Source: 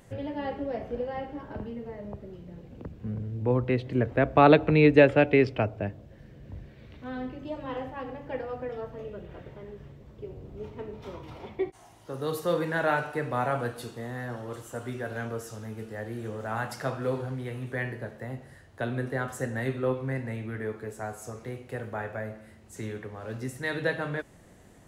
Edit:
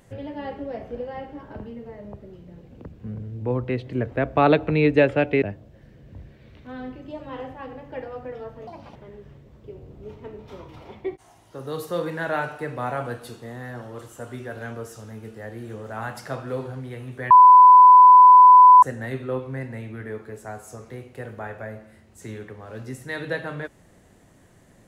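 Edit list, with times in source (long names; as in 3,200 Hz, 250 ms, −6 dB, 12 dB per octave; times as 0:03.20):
0:05.42–0:05.79: remove
0:09.04–0:09.50: play speed 161%
0:17.85–0:19.37: beep over 1,000 Hz −6 dBFS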